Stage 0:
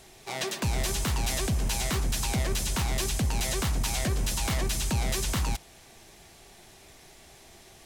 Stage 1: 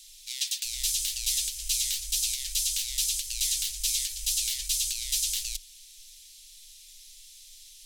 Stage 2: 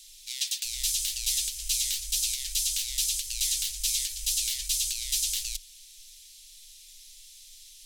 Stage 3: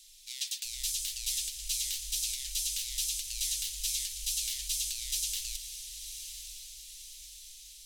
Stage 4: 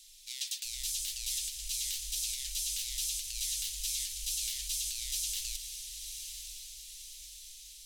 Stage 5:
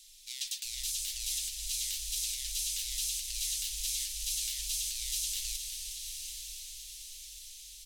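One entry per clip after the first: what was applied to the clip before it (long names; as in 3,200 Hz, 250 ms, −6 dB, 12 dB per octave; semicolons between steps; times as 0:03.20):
inverse Chebyshev band-stop filter 100–830 Hz, stop band 70 dB; level +6 dB
parametric band 260 Hz +5.5 dB 1.6 octaves
feedback delay with all-pass diffusion 1,020 ms, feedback 52%, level −9.5 dB; level −5.5 dB
brickwall limiter −24.5 dBFS, peak gain reduction 5.5 dB
repeating echo 364 ms, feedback 58%, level −9 dB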